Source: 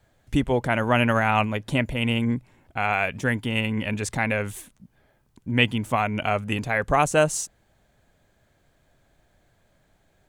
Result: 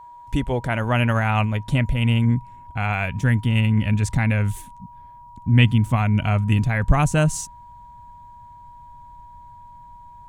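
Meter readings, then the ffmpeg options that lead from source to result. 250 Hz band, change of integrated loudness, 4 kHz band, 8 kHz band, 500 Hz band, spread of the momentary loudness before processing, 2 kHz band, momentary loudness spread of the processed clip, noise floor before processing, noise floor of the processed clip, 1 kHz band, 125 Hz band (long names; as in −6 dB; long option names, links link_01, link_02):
+3.0 dB, +3.0 dB, −1.0 dB, −1.0 dB, −3.5 dB, 8 LU, −1.5 dB, 9 LU, −65 dBFS, −44 dBFS, −2.0 dB, +10.0 dB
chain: -af "aeval=exprs='val(0)+0.0112*sin(2*PI*960*n/s)':channel_layout=same,asubboost=boost=8:cutoff=160,volume=-1dB"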